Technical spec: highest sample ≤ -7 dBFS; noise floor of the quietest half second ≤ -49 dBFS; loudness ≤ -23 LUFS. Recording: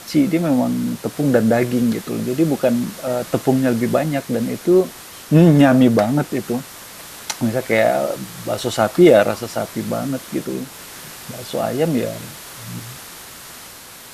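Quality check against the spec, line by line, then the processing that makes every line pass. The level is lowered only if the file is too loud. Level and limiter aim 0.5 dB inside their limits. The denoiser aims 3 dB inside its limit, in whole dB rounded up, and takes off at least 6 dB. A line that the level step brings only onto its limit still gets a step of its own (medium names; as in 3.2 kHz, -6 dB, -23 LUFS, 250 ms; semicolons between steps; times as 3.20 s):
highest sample -1.5 dBFS: fail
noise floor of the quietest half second -39 dBFS: fail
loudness -18.0 LUFS: fail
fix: noise reduction 8 dB, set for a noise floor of -39 dBFS; trim -5.5 dB; peak limiter -7.5 dBFS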